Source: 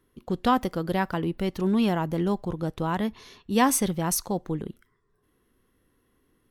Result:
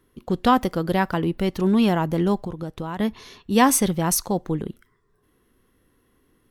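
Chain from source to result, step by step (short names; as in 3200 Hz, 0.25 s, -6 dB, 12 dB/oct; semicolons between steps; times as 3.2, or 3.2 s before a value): 2.44–3 compressor 6:1, threshold -32 dBFS, peak gain reduction 9 dB; gain +4.5 dB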